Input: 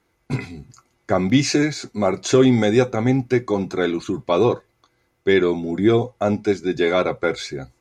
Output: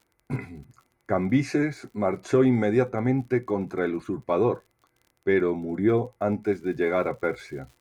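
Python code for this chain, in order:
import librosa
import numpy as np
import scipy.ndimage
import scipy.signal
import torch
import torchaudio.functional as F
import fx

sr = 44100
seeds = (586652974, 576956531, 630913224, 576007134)

y = fx.band_shelf(x, sr, hz=4600.0, db=-12.5, octaves=1.7)
y = fx.dmg_crackle(y, sr, seeds[0], per_s=fx.steps((0.0, 38.0), (6.43, 190.0)), level_db=-38.0)
y = y * 10.0 ** (-5.5 / 20.0)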